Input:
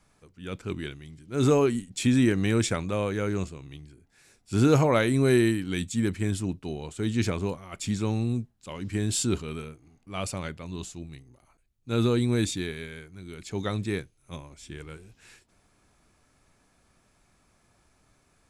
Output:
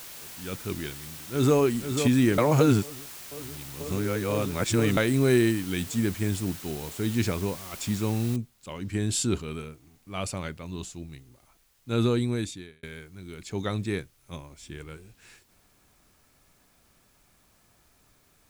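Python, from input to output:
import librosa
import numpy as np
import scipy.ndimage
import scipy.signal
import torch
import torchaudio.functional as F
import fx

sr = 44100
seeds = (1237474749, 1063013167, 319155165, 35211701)

y = fx.echo_throw(x, sr, start_s=0.85, length_s=0.73, ms=490, feedback_pct=70, wet_db=-7.5)
y = fx.noise_floor_step(y, sr, seeds[0], at_s=8.36, before_db=-43, after_db=-67, tilt_db=0.0)
y = fx.edit(y, sr, fx.reverse_span(start_s=2.38, length_s=2.59),
    fx.fade_out_span(start_s=12.09, length_s=0.74), tone=tone)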